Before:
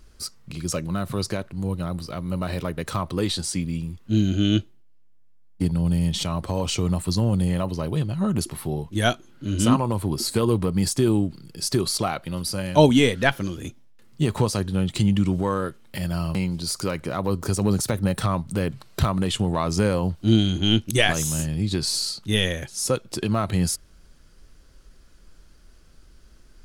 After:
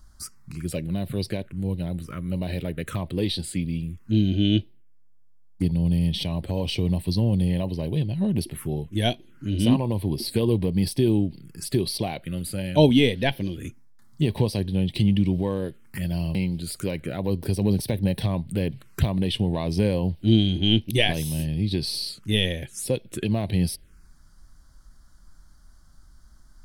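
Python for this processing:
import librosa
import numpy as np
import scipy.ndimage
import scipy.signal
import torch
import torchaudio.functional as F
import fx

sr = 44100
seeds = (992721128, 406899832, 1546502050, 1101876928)

y = fx.env_phaser(x, sr, low_hz=410.0, high_hz=1300.0, full_db=-22.5)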